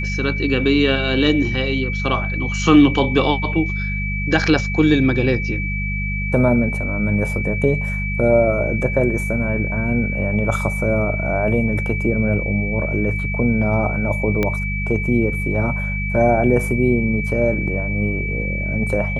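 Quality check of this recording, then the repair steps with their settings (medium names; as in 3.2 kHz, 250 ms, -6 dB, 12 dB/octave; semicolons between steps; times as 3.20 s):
hum 50 Hz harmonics 4 -24 dBFS
whine 2.3 kHz -25 dBFS
14.43 s: pop -7 dBFS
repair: de-click; band-stop 2.3 kHz, Q 30; de-hum 50 Hz, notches 4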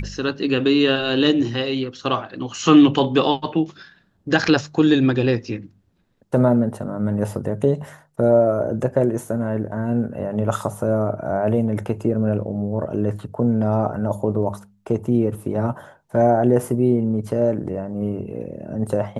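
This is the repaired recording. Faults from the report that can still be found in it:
14.43 s: pop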